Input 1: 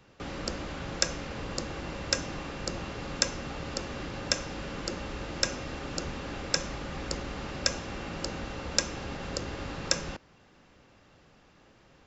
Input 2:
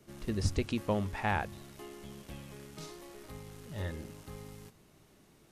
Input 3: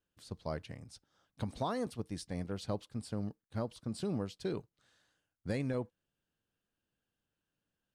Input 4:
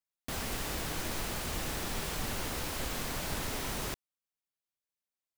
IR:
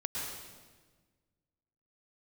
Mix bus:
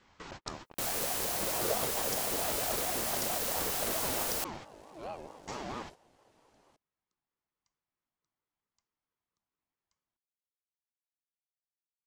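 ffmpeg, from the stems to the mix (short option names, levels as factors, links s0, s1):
-filter_complex "[0:a]highpass=250,volume=0.944[s0];[1:a]lowpass=7900,adelay=1250,volume=0.891[s1];[2:a]highshelf=f=4100:g=-11,acrusher=bits=5:mix=0:aa=0.5,volume=0.631,asplit=2[s2][s3];[3:a]highshelf=f=6000:g=11,adelay=500,volume=1.19[s4];[s3]apad=whole_len=532274[s5];[s0][s5]sidechaingate=range=0.00251:threshold=0.00447:ratio=16:detection=peak[s6];[s6][s1]amix=inputs=2:normalize=0,acrossover=split=130|3000[s7][s8][s9];[s8]acompressor=threshold=0.00891:ratio=6[s10];[s7][s10][s9]amix=inputs=3:normalize=0,alimiter=limit=0.119:level=0:latency=1:release=442,volume=1[s11];[s2][s4][s11]amix=inputs=3:normalize=0,bandreject=f=2900:w=15,aeval=exprs='val(0)*sin(2*PI*590*n/s+590*0.25/4.5*sin(2*PI*4.5*n/s))':c=same"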